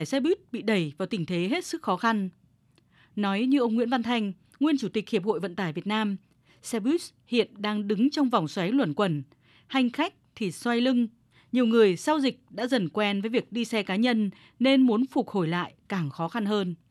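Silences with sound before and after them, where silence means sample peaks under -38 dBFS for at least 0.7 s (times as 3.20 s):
2.29–3.17 s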